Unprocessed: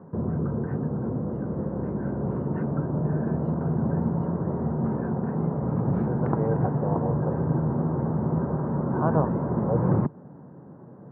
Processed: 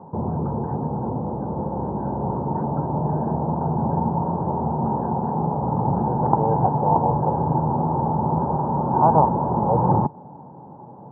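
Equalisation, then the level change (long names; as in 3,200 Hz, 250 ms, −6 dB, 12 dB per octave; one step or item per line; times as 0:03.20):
low-pass with resonance 870 Hz, resonance Q 9.5
low-shelf EQ 82 Hz +5.5 dB
0.0 dB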